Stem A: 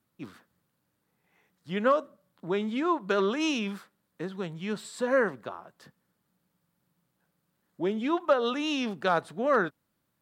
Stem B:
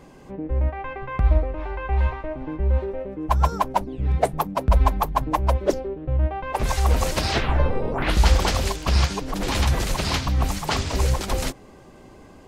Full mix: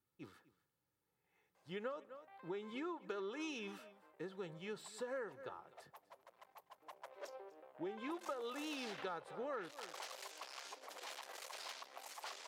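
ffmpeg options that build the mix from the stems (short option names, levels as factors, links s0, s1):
-filter_complex "[0:a]aecho=1:1:2.3:0.52,volume=0.266,asplit=2[s0][s1];[s1]volume=0.1[s2];[1:a]aeval=exprs='(tanh(12.6*val(0)+0.7)-tanh(0.7))/12.6':c=same,alimiter=level_in=1.78:limit=0.0631:level=0:latency=1:release=222,volume=0.562,highpass=f=520:w=0.5412,highpass=f=520:w=1.3066,adelay=1550,volume=0.422,afade=t=in:st=6.78:d=0.43:silence=0.281838,asplit=2[s3][s4];[s4]volume=0.0891[s5];[s2][s5]amix=inputs=2:normalize=0,aecho=0:1:249:1[s6];[s0][s3][s6]amix=inputs=3:normalize=0,acompressor=threshold=0.00891:ratio=6"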